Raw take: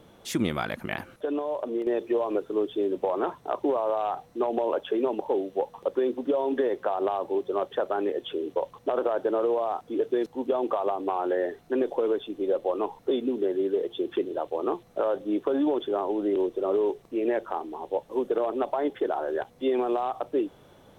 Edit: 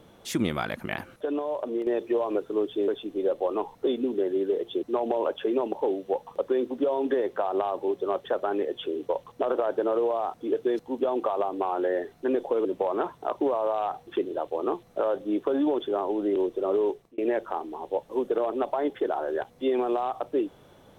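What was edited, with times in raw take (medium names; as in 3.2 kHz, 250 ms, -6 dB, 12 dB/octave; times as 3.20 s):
2.88–4.30 s: swap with 12.12–14.07 s
16.89–17.18 s: fade out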